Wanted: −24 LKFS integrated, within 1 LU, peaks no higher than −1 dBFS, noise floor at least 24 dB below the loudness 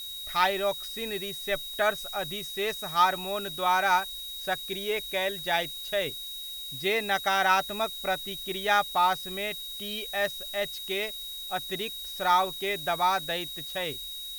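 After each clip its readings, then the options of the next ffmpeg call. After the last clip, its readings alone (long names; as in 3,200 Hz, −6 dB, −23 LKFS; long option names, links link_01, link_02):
interfering tone 3,800 Hz; level of the tone −37 dBFS; background noise floor −39 dBFS; target noise floor −53 dBFS; integrated loudness −28.5 LKFS; sample peak −9.0 dBFS; target loudness −24.0 LKFS
→ -af "bandreject=frequency=3800:width=30"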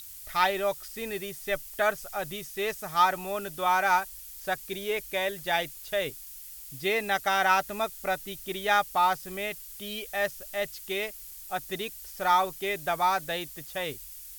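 interfering tone none found; background noise floor −45 dBFS; target noise floor −53 dBFS
→ -af "afftdn=noise_reduction=8:noise_floor=-45"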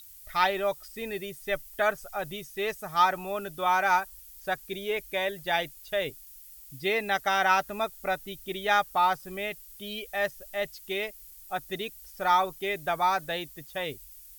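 background noise floor −49 dBFS; target noise floor −53 dBFS
→ -af "afftdn=noise_reduction=6:noise_floor=-49"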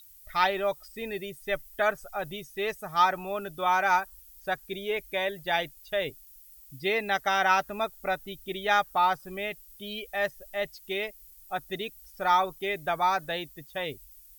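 background noise floor −53 dBFS; integrated loudness −29.0 LKFS; sample peak −9.5 dBFS; target loudness −24.0 LKFS
→ -af "volume=5dB"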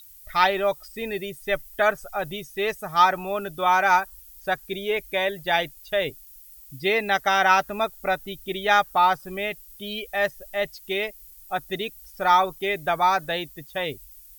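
integrated loudness −24.0 LKFS; sample peak −4.5 dBFS; background noise floor −48 dBFS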